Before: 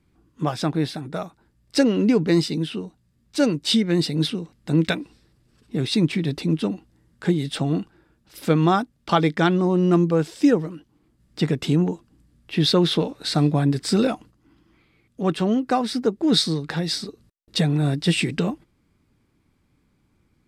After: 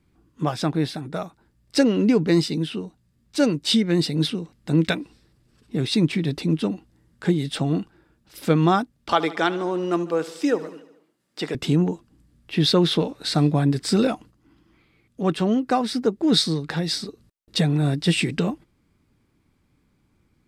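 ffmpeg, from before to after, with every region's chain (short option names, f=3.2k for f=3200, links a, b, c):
-filter_complex "[0:a]asettb=1/sr,asplit=3[a][b][c];[a]atrim=end=9.124[d];[b]atrim=start=9.12:end=11.55,asetpts=PTS-STARTPTS,afade=t=in:d=0.004:c=qsin,afade=t=out:st=2.426:d=0.004:c=qsin,highpass=380,aecho=1:1:74|148|222|296|370|444:0.141|0.0848|0.0509|0.0305|0.0183|0.011,atrim=end_sample=107163[e];[c]atrim=start=11.546[f];[d][e]acrossfade=d=0.004:c1=hsin:c2=qsin[g];[g][f]acrossfade=d=0.004:c1=qsin:c2=hsin"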